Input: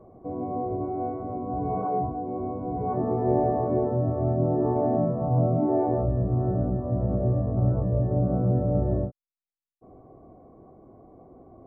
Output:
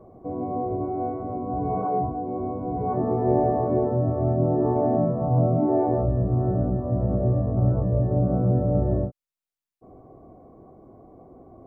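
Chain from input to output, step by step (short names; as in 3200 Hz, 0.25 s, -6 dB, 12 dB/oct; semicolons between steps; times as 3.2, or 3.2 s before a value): gain +2 dB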